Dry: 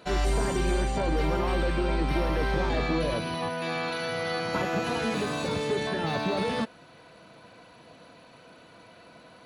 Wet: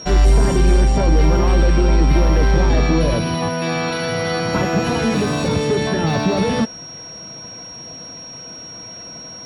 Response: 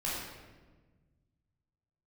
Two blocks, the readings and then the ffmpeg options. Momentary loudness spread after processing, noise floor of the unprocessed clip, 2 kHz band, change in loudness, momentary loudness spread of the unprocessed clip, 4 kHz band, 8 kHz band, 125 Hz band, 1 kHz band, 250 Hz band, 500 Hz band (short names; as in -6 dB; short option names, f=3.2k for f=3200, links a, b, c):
17 LU, -53 dBFS, +7.0 dB, +11.0 dB, 3 LU, +9.5 dB, +11.0 dB, +14.5 dB, +7.5 dB, +11.5 dB, +9.0 dB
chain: -filter_complex "[0:a]lowshelf=f=270:g=9.5,aeval=exprs='val(0)+0.00891*sin(2*PI*5600*n/s)':c=same,asplit=2[a][b];[b]asoftclip=type=tanh:threshold=-24dB,volume=-4.5dB[c];[a][c]amix=inputs=2:normalize=0,volume=4dB"